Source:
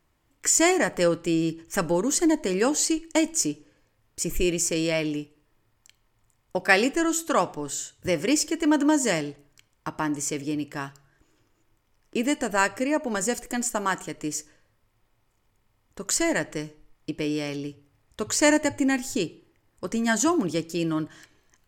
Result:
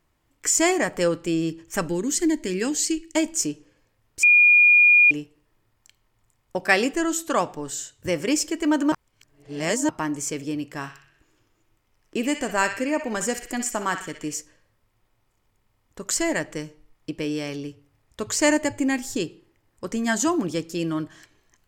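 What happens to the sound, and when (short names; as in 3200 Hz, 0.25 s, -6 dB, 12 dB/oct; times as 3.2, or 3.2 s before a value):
1.88–3.16 band shelf 810 Hz -9.5 dB
4.23–5.11 bleep 2430 Hz -11 dBFS
8.92–9.89 reverse
10.69–14.37 narrowing echo 62 ms, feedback 60%, band-pass 2600 Hz, level -6.5 dB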